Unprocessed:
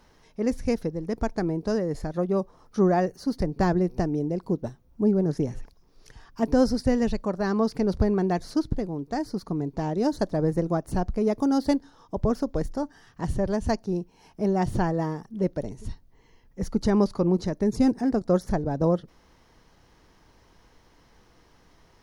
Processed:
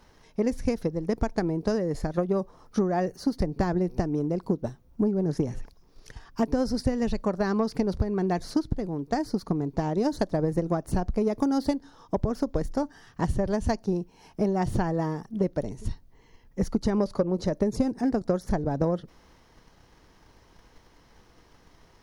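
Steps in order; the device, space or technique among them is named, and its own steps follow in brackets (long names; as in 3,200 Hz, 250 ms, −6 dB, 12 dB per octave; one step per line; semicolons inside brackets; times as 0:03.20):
0:16.98–0:17.88: parametric band 560 Hz +8 dB 0.39 octaves
drum-bus smash (transient designer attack +7 dB, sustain +2 dB; downward compressor 6 to 1, threshold −20 dBFS, peak gain reduction 11 dB; soft clipping −12 dBFS, distortion −24 dB)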